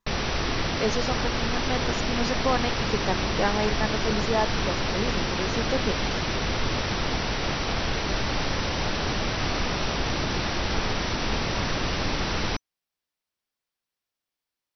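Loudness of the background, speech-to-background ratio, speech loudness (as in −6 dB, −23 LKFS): −27.0 LKFS, −3.5 dB, −30.5 LKFS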